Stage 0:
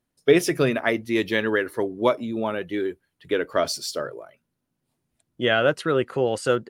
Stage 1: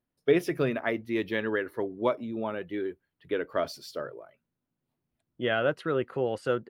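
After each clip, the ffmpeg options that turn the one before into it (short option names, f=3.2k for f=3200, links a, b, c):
-af "equalizer=f=7.7k:t=o:w=1.5:g=-13,volume=-6dB"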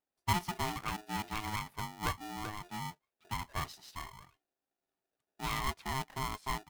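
-af "aeval=exprs='val(0)*sgn(sin(2*PI*530*n/s))':c=same,volume=-8.5dB"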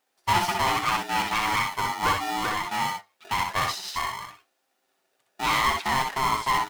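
-filter_complex "[0:a]asplit=2[a][b];[b]highpass=f=720:p=1,volume=20dB,asoftclip=type=tanh:threshold=-19dB[c];[a][c]amix=inputs=2:normalize=0,lowpass=f=7.6k:p=1,volume=-6dB,flanger=delay=3.8:depth=6.4:regen=76:speed=0.83:shape=sinusoidal,asplit=2[d][e];[e]aecho=0:1:62|72:0.562|0.299[f];[d][f]amix=inputs=2:normalize=0,volume=8.5dB"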